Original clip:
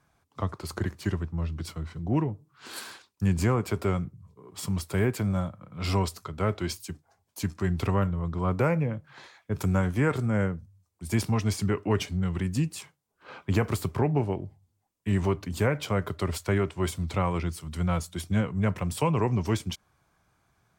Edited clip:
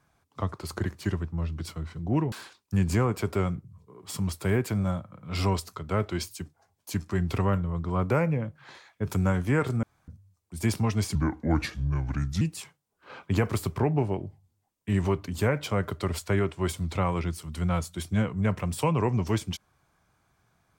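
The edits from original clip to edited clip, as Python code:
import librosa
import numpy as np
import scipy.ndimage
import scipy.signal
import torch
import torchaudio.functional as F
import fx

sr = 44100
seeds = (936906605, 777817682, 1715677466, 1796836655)

y = fx.edit(x, sr, fx.cut(start_s=2.32, length_s=0.49),
    fx.room_tone_fill(start_s=10.32, length_s=0.25),
    fx.speed_span(start_s=11.64, length_s=0.96, speed=0.76), tone=tone)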